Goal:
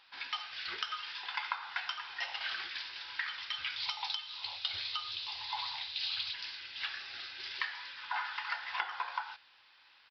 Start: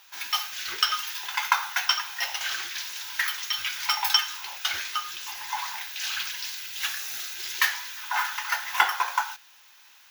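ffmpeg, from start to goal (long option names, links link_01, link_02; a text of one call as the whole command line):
ffmpeg -i in.wav -filter_complex "[0:a]asettb=1/sr,asplit=3[link_01][link_02][link_03];[link_01]atrim=end=3.764[link_04];[link_02]atrim=start=3.76:end=6.34,asetpts=PTS-STARTPTS,afade=type=in:duration=0.004:curve=qsin,afade=type=out:start_time=2.576:duration=0.004:curve=qsin,equalizer=frequency=100:width_type=o:width=0.67:gain=11,equalizer=frequency=250:width_type=o:width=0.67:gain=-8,equalizer=frequency=1600:width_type=o:width=0.67:gain=-9,equalizer=frequency=4000:width_type=o:width=0.67:gain=10[link_05];[link_03]atrim=start=6.336[link_06];[link_04][link_05]acrossfade=duration=0.004:curve1=hsin:curve2=qsin[link_07];[link_07][link_06]acrossfade=duration=0.004:curve1=qsin:curve2=hsin,acompressor=threshold=-26dB:ratio=12,aresample=11025,aresample=44100,volume=-5.5dB" out.wav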